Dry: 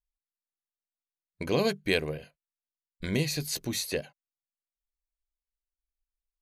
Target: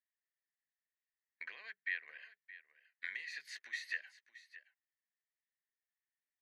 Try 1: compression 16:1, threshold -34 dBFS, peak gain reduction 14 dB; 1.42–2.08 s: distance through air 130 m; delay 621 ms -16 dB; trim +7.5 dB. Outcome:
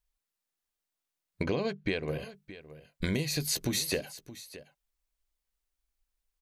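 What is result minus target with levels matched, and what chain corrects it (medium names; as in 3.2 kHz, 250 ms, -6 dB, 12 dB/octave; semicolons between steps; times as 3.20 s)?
2 kHz band -10.5 dB
compression 16:1, threshold -34 dBFS, peak gain reduction 14 dB; ladder band-pass 1.9 kHz, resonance 85%; 1.42–2.08 s: distance through air 130 m; delay 621 ms -16 dB; trim +7.5 dB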